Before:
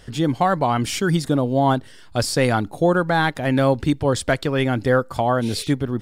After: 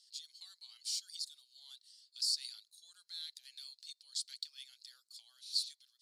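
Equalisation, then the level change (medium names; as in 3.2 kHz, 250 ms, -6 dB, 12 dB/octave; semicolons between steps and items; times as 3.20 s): ladder band-pass 4.6 kHz, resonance 75%; differentiator; treble shelf 6 kHz +7.5 dB; -2.5 dB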